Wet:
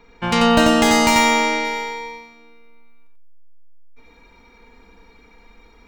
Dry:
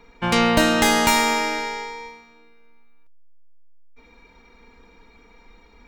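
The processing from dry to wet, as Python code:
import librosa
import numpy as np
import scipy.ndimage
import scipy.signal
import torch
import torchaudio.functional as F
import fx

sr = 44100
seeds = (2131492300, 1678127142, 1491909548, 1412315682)

y = fx.peak_eq(x, sr, hz=12000.0, db=fx.steps((0.0, -8.5), (1.65, 7.5)), octaves=0.42)
y = fx.echo_feedback(y, sr, ms=90, feedback_pct=16, wet_db=-3.0)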